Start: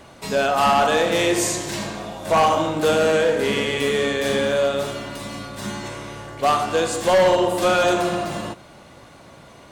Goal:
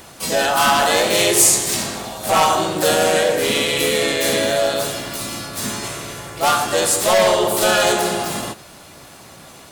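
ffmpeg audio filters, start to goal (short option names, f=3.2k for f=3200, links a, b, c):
-filter_complex "[0:a]acontrast=82,crystalizer=i=3:c=0,asplit=2[a][b];[b]asetrate=52444,aresample=44100,atempo=0.840896,volume=-1dB[c];[a][c]amix=inputs=2:normalize=0,volume=-8dB"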